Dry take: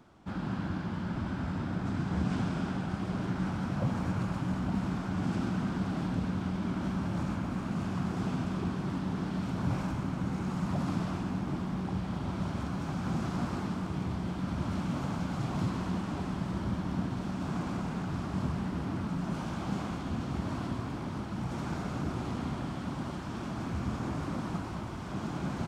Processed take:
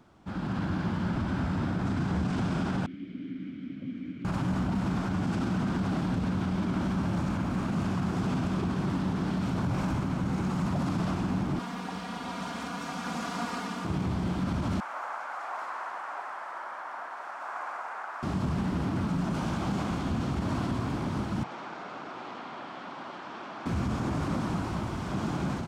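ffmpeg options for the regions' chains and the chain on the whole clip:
-filter_complex "[0:a]asettb=1/sr,asplit=3[a][b][c];[a]atrim=end=2.864[d];[b]atrim=start=2.86:end=4.25,asetpts=PTS-STARTPTS,afade=t=in:d=0.004:c=qsin,afade=t=out:st=1.386:d=0.004:c=qsin,asplit=3[e][f][g];[e]bandpass=f=270:t=q:w=8,volume=0dB[h];[f]bandpass=f=2.29k:t=q:w=8,volume=-6dB[i];[g]bandpass=f=3.01k:t=q:w=8,volume=-9dB[j];[h][i][j]amix=inputs=3:normalize=0,highshelf=f=5.1k:g=-6[k];[c]atrim=start=4.246[l];[d][k]acrossfade=d=0.004:c1=hsin:c2=qsin[m];[m][l]acrossfade=d=0.004:c1=qsin:c2=hsin,asettb=1/sr,asplit=3[n][o][p];[n]atrim=end=11.594[q];[o]atrim=start=11.59:end=13.85,asetpts=PTS-STARTPTS,afade=t=in:d=0.004:c=qsin,afade=t=out:st=2.256:d=0.004:c=qsin,highpass=f=840:p=1,aecho=1:1:4.2:0.87,atrim=end_sample=99666[r];[p]atrim=start=13.846[s];[q][r]acrossfade=d=0.004:c1=hsin:c2=qsin[t];[t][s]acrossfade=d=0.004:c1=qsin:c2=hsin,asettb=1/sr,asplit=3[u][v][w];[u]atrim=end=14.804[x];[v]atrim=start=14.8:end=18.23,asetpts=PTS-STARTPTS,afade=t=in:d=0.004:c=qsin,afade=t=out:st=3.426:d=0.004:c=qsin,highpass=f=690:w=0.5412,highpass=f=690:w=1.3066,highshelf=f=2.4k:t=q:w=1.5:g=-11[y];[w]atrim=start=18.226[z];[x][y]acrossfade=d=0.004:c1=hsin:c2=qsin[aa];[aa][z]acrossfade=d=0.004:c1=qsin:c2=hsin,asettb=1/sr,asplit=3[ab][ac][ad];[ab]atrim=end=21.434[ae];[ac]atrim=start=21.43:end=23.66,asetpts=PTS-STARTPTS,afade=t=in:d=0.004:c=qsin,afade=t=out:st=2.226:d=0.004:c=qsin,highpass=390,lowpass=3.7k,acrossover=split=600|1200[af][ag][ah];[af]acompressor=threshold=-52dB:ratio=4[ai];[ag]acompressor=threshold=-48dB:ratio=4[aj];[ah]acompressor=threshold=-51dB:ratio=4[ak];[ai][aj][ak]amix=inputs=3:normalize=0[al];[ad]atrim=start=23.656[am];[ae][al]acrossfade=d=0.004:c1=hsin:c2=qsin[an];[an][am]acrossfade=d=0.004:c1=qsin:c2=hsin,alimiter=level_in=3dB:limit=-24dB:level=0:latency=1:release=29,volume=-3dB,dynaudnorm=f=290:g=3:m=5.5dB"

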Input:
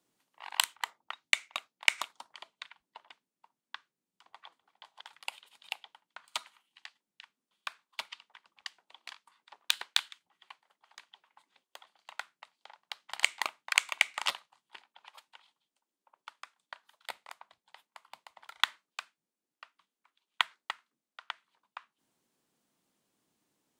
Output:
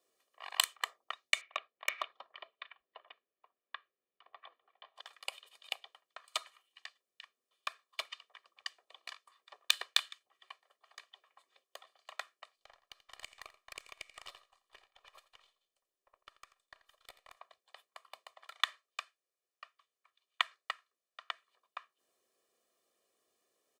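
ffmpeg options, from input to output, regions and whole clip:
-filter_complex "[0:a]asettb=1/sr,asplit=3[a][b][c];[a]atrim=end=1.414[d];[b]atrim=start=1.41:end=4.96,asetpts=PTS-STARTPTS,afade=t=in:d=0.004:c=qsin,afade=t=out:st=3.546:d=0.004:c=qsin,lowpass=f=3.3k:w=0.5412,lowpass=f=3.3k:w=1.3066,asoftclip=type=hard:threshold=-22dB[e];[c]atrim=start=4.956[f];[d][e]acrossfade=d=0.004:c1=hsin:c2=qsin[g];[g][f]acrossfade=d=0.004:c1=qsin:c2=hsin,asettb=1/sr,asplit=3[h][i][j];[h]atrim=end=12.564[k];[i]atrim=start=12.56:end=17.37,asetpts=PTS-STARTPTS,afade=t=in:d=0.004:c=qsin,afade=t=out:st=4.806:d=0.004:c=qsin,aeval=exprs='if(lt(val(0),0),0.447*val(0),val(0))':c=same,acompressor=threshold=-52dB:ratio=2.5:attack=3.2:release=140:knee=1:detection=peak,aecho=1:1:85:0.178,atrim=end_sample=212121[l];[j]atrim=start=17.366[m];[k][l]acrossfade=d=0.004:c1=hsin:c2=qsin[n];[n][m]acrossfade=d=0.004:c1=qsin:c2=hsin,asettb=1/sr,asplit=3[o][p][q];[o]atrim=end=18.354[r];[p]atrim=start=18.35:end=21.26,asetpts=PTS-STARTPTS,afade=t=in:d=0.004:c=qsin,afade=t=out:st=2.906:d=0.004:c=qsin,highpass=f=550:p=1,highshelf=f=10k:g=-5[s];[q]atrim=start=21.256[t];[r][s]acrossfade=d=0.004:c1=hsin:c2=qsin[u];[u][t]acrossfade=d=0.004:c1=qsin:c2=hsin,lowshelf=f=230:t=q:w=3:g=-11,aecho=1:1:1.7:0.84,alimiter=level_in=5dB:limit=-1dB:release=50:level=0:latency=1,volume=-8dB"

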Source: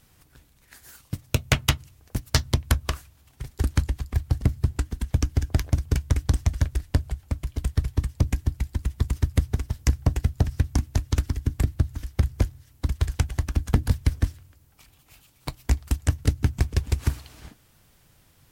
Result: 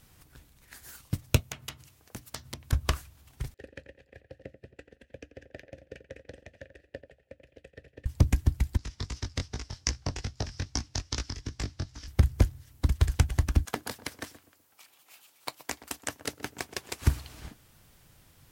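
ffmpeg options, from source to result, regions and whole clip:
-filter_complex "[0:a]asettb=1/sr,asplit=3[a][b][c];[a]atrim=end=1.404[d];[b]atrim=start=1.4:end=2.73,asetpts=PTS-STARTPTS,afade=t=in:d=0.004:c=qsin,afade=t=out:st=1.326:d=0.004:c=qsin,highpass=f=260:p=1,acompressor=threshold=-35dB:ratio=12:attack=3.2:release=140:knee=1:detection=peak[e];[c]atrim=start=2.726[f];[d][e]acrossfade=d=0.004:c1=hsin:c2=qsin[g];[g][f]acrossfade=d=0.004:c1=qsin:c2=hsin,asettb=1/sr,asplit=3[h][i][j];[h]atrim=end=3.544[k];[i]atrim=start=3.54:end=8.06,asetpts=PTS-STARTPTS,afade=t=in:d=0.004:c=qsin,afade=t=out:st=4.516:d=0.004:c=qsin,asplit=3[l][m][n];[l]bandpass=f=530:t=q:w=8,volume=0dB[o];[m]bandpass=f=1.84k:t=q:w=8,volume=-6dB[p];[n]bandpass=f=2.48k:t=q:w=8,volume=-9dB[q];[o][p][q]amix=inputs=3:normalize=0,asplit=2[r][s];[s]adelay=87,lowpass=f=1.9k:p=1,volume=-10.5dB,asplit=2[t][u];[u]adelay=87,lowpass=f=1.9k:p=1,volume=0.22,asplit=2[v][w];[w]adelay=87,lowpass=f=1.9k:p=1,volume=0.22[x];[r][t][v][x]amix=inputs=4:normalize=0,atrim=end_sample=199332[y];[j]atrim=start=8.056[z];[k][y]acrossfade=d=0.004:c1=hsin:c2=qsin[aa];[aa][z]acrossfade=d=0.004:c1=qsin:c2=hsin,asettb=1/sr,asplit=3[ab][ac][ad];[ab]atrim=end=8.774[ae];[ac]atrim=start=8.77:end=12.08,asetpts=PTS-STARTPTS,afade=t=in:d=0.004:c=qsin,afade=t=out:st=3.306:d=0.004:c=qsin,lowshelf=f=310:g=-10.5,flanger=delay=17.5:depth=5.5:speed=2.5,lowpass=f=5.4k:t=q:w=3.5[af];[ad]atrim=start=12.076[ag];[ae][af]acrossfade=d=0.004:c1=hsin:c2=qsin[ah];[ah][ag]acrossfade=d=0.004:c1=qsin:c2=hsin,asettb=1/sr,asplit=3[ai][aj][ak];[ai]atrim=end=13.654[al];[aj]atrim=start=13.65:end=17.02,asetpts=PTS-STARTPTS,afade=t=in:d=0.004:c=qsin,afade=t=out:st=3.366:d=0.004:c=qsin,highpass=500,asplit=2[am][an];[an]adelay=124,lowpass=f=810:p=1,volume=-12dB,asplit=2[ao][ap];[ap]adelay=124,lowpass=f=810:p=1,volume=0.38,asplit=2[aq][ar];[ar]adelay=124,lowpass=f=810:p=1,volume=0.38,asplit=2[as][at];[at]adelay=124,lowpass=f=810:p=1,volume=0.38[au];[am][ao][aq][as][au]amix=inputs=5:normalize=0,atrim=end_sample=148617[av];[ak]atrim=start=17.016[aw];[al][av]acrossfade=d=0.004:c1=hsin:c2=qsin[ax];[ax][aw]acrossfade=d=0.004:c1=qsin:c2=hsin"

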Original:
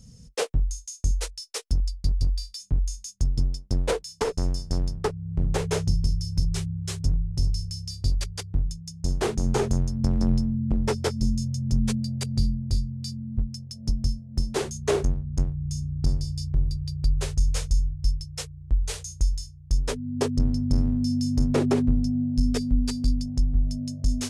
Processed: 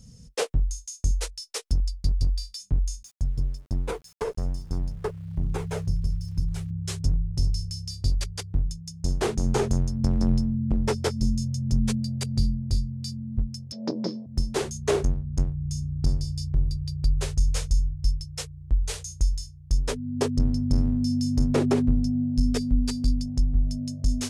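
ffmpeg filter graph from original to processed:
-filter_complex "[0:a]asettb=1/sr,asplit=3[a][b][c];[a]atrim=end=3.034[d];[b]atrim=start=3.03:end=6.71,asetpts=PTS-STARTPTS,afade=t=in:d=0.004:c=qsin,afade=t=out:st=3.676:d=0.004:c=qsin,equalizer=f=5.2k:t=o:w=1.9:g=-7.5,flanger=delay=0.8:depth=1.1:regen=-43:speed=1.2:shape=sinusoidal,aeval=exprs='val(0)*gte(abs(val(0)),0.00251)':c=same[e];[c]atrim=start=6.706[f];[d][e]acrossfade=d=0.004:c1=hsin:c2=qsin[g];[g][f]acrossfade=d=0.004:c1=qsin:c2=hsin,asettb=1/sr,asplit=3[h][i][j];[h]atrim=end=13.724[k];[i]atrim=start=13.72:end=14.26,asetpts=PTS-STARTPTS,afade=t=in:d=0.004:c=qsin,afade=t=out:st=0.536:d=0.004:c=qsin,aeval=exprs='0.251*sin(PI/2*3.55*val(0)/0.251)':c=same,highpass=f=260:w=0.5412,highpass=f=260:w=1.3066,equalizer=f=300:t=q:w=4:g=-5,equalizer=f=580:t=q:w=4:g=5,equalizer=f=970:t=q:w=4:g=6,equalizer=f=2.9k:t=q:w=4:g=-8,lowpass=f=3.8k:w=0.5412,lowpass=f=3.8k:w=1.3066[l];[j]atrim=start=14.256[m];[k][l]acrossfade=d=0.004:c1=hsin:c2=qsin[n];[n][m]acrossfade=d=0.004:c1=qsin:c2=hsin"

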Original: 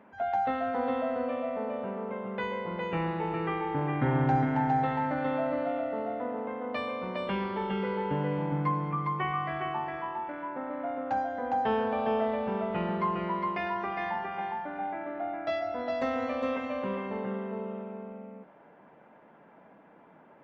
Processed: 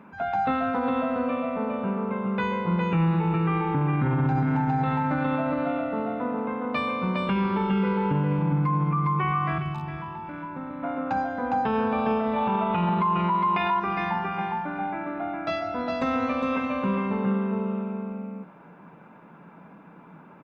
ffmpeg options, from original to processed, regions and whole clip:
-filter_complex "[0:a]asettb=1/sr,asplit=3[a][b][c];[a]atrim=end=9.584[d];[b]atrim=start=9.58:end=10.83,asetpts=PTS-STARTPTS,afade=t=in:d=0.004:c=qsin,afade=t=out:st=1.246:d=0.004:c=qsin,volume=24dB,asoftclip=hard,volume=-24dB,acrossover=split=160|3000[e][f][g];[f]acompressor=threshold=-41dB:ratio=6:attack=3.2:release=140:knee=2.83:detection=peak[h];[e][h][g]amix=inputs=3:normalize=0,equalizer=f=110:w=0.67:g=6.5[i];[c]atrim=start=10.826[j];[d][i]acrossfade=d=0.004:c1=hsin:c2=qsin[k];[k][j]acrossfade=d=0.004:c1=qsin:c2=hsin,asettb=1/sr,asplit=3[l][m][n];[l]atrim=end=12.364[o];[m]atrim=start=12.36:end=13.8,asetpts=PTS-STARTPTS,afade=t=in:d=0.004:c=qsin,afade=t=out:st=1.436:d=0.004:c=qsin,lowpass=f=3.5k:t=q:w=2.8,equalizer=f=880:t=o:w=0.71:g=11.5[p];[n]atrim=start=13.796[q];[o][p]acrossfade=d=0.004:c1=hsin:c2=qsin[r];[r][q]acrossfade=d=0.004:c1=qsin:c2=hsin,equalizer=f=170:w=4.3:g=9,aecho=1:1:0.8:0.46,alimiter=limit=-22.5dB:level=0:latency=1:release=66,volume=6dB"

